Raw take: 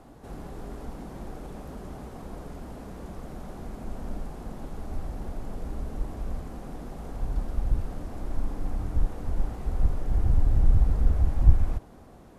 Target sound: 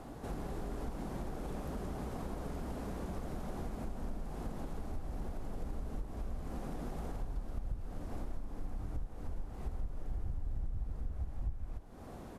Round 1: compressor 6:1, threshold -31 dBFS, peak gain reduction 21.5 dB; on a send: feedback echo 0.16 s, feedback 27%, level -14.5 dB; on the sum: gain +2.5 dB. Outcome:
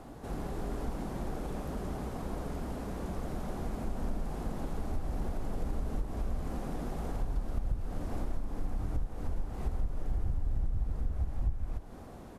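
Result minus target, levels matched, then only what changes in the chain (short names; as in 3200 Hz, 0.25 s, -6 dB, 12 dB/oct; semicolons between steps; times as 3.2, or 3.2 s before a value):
compressor: peak gain reduction -6 dB
change: compressor 6:1, threshold -38.5 dBFS, peak gain reduction 28 dB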